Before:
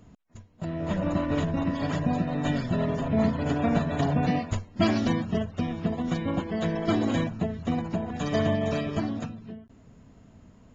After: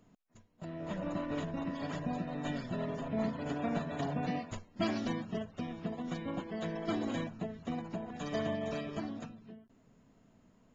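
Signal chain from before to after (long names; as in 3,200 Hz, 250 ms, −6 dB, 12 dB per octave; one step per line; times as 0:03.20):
parametric band 66 Hz −15 dB 1.3 octaves
level −8.5 dB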